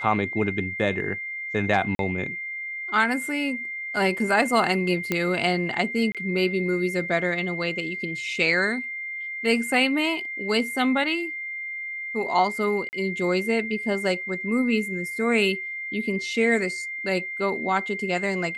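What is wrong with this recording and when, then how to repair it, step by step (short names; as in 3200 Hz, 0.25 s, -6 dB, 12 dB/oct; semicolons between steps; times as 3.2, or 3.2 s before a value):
tone 2100 Hz -30 dBFS
1.95–1.99 gap 42 ms
5.12 pop -9 dBFS
6.12–6.15 gap 27 ms
12.89–12.93 gap 39 ms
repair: de-click; notch 2100 Hz, Q 30; interpolate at 1.95, 42 ms; interpolate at 6.12, 27 ms; interpolate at 12.89, 39 ms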